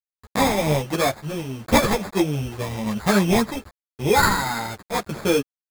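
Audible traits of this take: aliases and images of a low sample rate 2.9 kHz, jitter 0%; random-step tremolo; a quantiser's noise floor 8-bit, dither none; a shimmering, thickened sound

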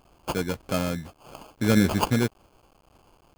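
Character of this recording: aliases and images of a low sample rate 1.9 kHz, jitter 0%; tremolo saw down 1.7 Hz, depth 30%; a quantiser's noise floor 10-bit, dither none

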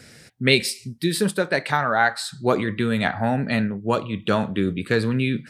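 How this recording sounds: noise floor -48 dBFS; spectral tilt -5.0 dB/octave

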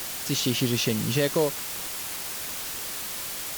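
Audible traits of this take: a quantiser's noise floor 6-bit, dither triangular; Vorbis

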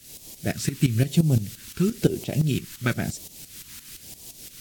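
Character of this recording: a quantiser's noise floor 8-bit, dither triangular; phasing stages 2, 1 Hz, lowest notch 620–1400 Hz; tremolo saw up 5.8 Hz, depth 80%; AAC

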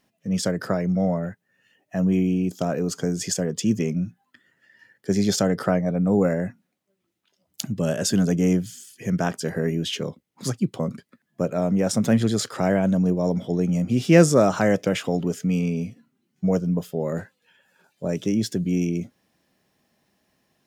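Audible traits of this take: noise floor -76 dBFS; spectral tilt -6.0 dB/octave

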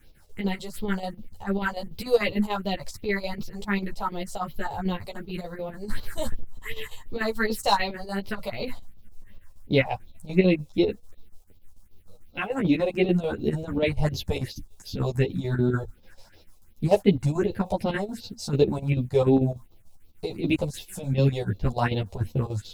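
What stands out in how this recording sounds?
a quantiser's noise floor 12-bit, dither none; phasing stages 4, 2.7 Hz, lowest notch 250–1700 Hz; chopped level 6.8 Hz, depth 65%, duty 70%; a shimmering, thickened sound

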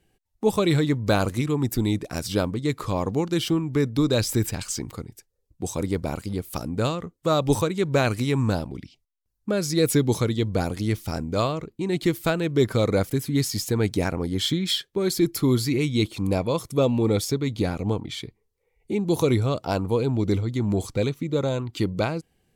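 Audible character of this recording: noise floor -73 dBFS; spectral tilt -5.5 dB/octave

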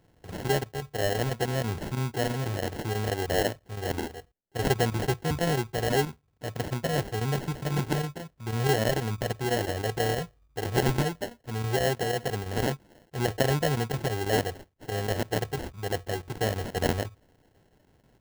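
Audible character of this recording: aliases and images of a low sample rate 1.2 kHz, jitter 0%; chopped level 6.1 Hz, depth 60%, duty 90%

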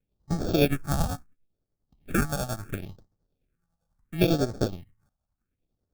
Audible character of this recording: tremolo triangle 10 Hz, depth 60%; aliases and images of a low sample rate 1 kHz, jitter 0%; phasing stages 4, 0.72 Hz, lowest notch 360–2700 Hz

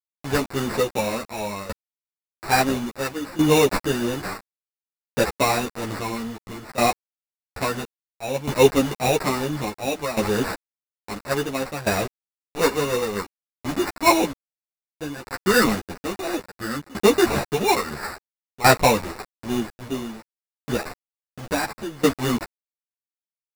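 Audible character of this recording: a quantiser's noise floor 6-bit, dither none; tremolo saw down 0.59 Hz, depth 85%; aliases and images of a low sample rate 3.2 kHz, jitter 0%; a shimmering, thickened sound

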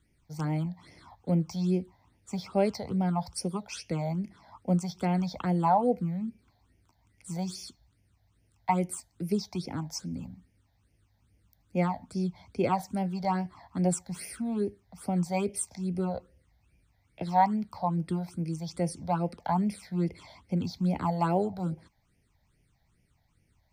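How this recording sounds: phasing stages 8, 2.4 Hz, lowest notch 350–1200 Hz

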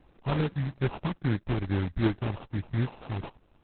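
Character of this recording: a buzz of ramps at a fixed pitch in blocks of 16 samples; phasing stages 8, 2.5 Hz, lowest notch 430–1600 Hz; aliases and images of a low sample rate 1.9 kHz, jitter 20%; Opus

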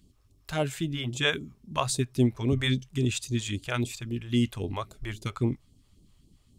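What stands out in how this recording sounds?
phasing stages 2, 3.7 Hz, lowest notch 210–1600 Hz

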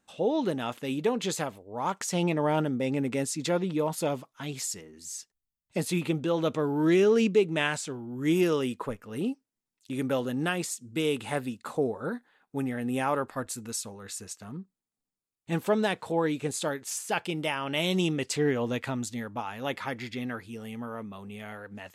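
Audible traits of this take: noise floor -90 dBFS; spectral tilt -5.0 dB/octave

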